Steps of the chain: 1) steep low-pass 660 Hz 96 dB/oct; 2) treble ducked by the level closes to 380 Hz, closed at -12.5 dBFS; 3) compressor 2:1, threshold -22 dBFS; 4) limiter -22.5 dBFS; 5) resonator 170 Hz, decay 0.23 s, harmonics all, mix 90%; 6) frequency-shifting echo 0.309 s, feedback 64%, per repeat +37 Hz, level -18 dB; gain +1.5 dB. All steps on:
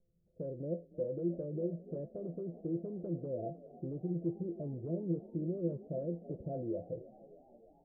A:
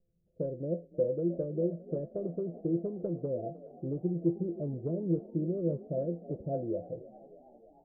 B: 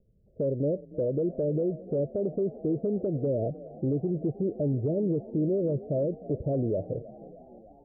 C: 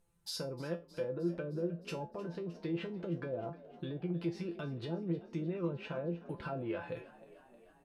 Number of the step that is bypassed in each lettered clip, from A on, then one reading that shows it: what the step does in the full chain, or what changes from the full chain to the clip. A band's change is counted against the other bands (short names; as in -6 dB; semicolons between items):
4, mean gain reduction 3.5 dB; 5, 1 kHz band -3.0 dB; 1, 1 kHz band +6.5 dB